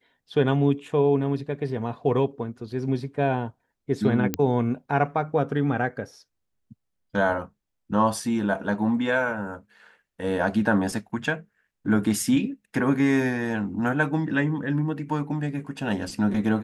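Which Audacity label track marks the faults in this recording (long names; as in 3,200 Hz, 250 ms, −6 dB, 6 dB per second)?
4.340000	4.340000	click −9 dBFS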